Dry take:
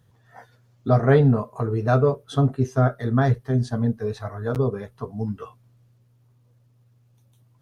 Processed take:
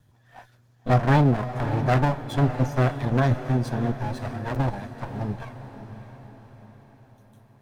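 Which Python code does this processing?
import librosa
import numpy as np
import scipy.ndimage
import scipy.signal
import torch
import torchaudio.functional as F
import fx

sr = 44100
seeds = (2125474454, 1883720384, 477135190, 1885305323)

y = fx.lower_of_two(x, sr, delay_ms=1.2)
y = fx.echo_diffused(y, sr, ms=587, feedback_pct=52, wet_db=-11.0)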